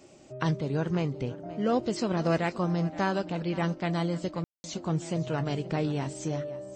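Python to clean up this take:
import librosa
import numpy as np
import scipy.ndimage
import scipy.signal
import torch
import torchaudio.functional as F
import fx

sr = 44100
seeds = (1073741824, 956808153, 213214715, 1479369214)

y = fx.fix_ambience(x, sr, seeds[0], print_start_s=0.0, print_end_s=0.5, start_s=4.44, end_s=4.64)
y = fx.fix_echo_inverse(y, sr, delay_ms=524, level_db=-17.0)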